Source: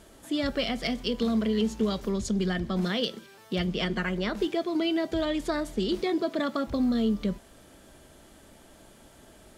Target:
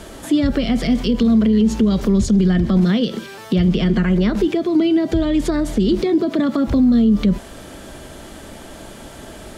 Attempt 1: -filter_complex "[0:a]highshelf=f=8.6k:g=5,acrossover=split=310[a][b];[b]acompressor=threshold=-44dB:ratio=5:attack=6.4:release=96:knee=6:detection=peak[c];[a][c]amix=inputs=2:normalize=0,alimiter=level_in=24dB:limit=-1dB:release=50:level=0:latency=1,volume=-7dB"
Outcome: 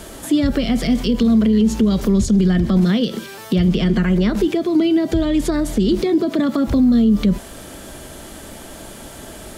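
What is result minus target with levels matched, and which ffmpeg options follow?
8000 Hz band +3.0 dB
-filter_complex "[0:a]highshelf=f=8.6k:g=-5.5,acrossover=split=310[a][b];[b]acompressor=threshold=-44dB:ratio=5:attack=6.4:release=96:knee=6:detection=peak[c];[a][c]amix=inputs=2:normalize=0,alimiter=level_in=24dB:limit=-1dB:release=50:level=0:latency=1,volume=-7dB"

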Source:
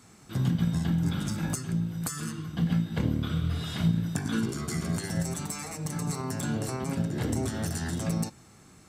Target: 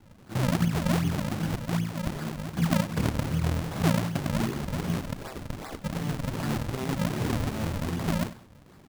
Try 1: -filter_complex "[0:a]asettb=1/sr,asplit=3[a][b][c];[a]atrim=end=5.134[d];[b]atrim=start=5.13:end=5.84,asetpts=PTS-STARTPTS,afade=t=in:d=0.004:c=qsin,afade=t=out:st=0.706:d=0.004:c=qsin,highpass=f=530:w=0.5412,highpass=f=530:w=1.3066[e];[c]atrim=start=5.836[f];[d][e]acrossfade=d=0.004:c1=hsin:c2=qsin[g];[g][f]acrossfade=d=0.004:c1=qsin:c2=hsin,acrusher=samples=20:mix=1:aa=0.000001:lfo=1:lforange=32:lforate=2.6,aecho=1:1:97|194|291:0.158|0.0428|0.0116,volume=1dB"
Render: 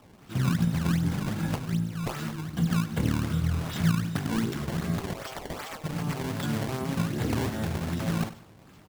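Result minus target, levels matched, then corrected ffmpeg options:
decimation with a swept rate: distortion -11 dB
-filter_complex "[0:a]asettb=1/sr,asplit=3[a][b][c];[a]atrim=end=5.134[d];[b]atrim=start=5.13:end=5.84,asetpts=PTS-STARTPTS,afade=t=in:d=0.004:c=qsin,afade=t=out:st=0.706:d=0.004:c=qsin,highpass=f=530:w=0.5412,highpass=f=530:w=1.3066[e];[c]atrim=start=5.836[f];[d][e]acrossfade=d=0.004:c1=hsin:c2=qsin[g];[g][f]acrossfade=d=0.004:c1=qsin:c2=hsin,acrusher=samples=68:mix=1:aa=0.000001:lfo=1:lforange=109:lforate=2.6,aecho=1:1:97|194|291:0.158|0.0428|0.0116,volume=1dB"

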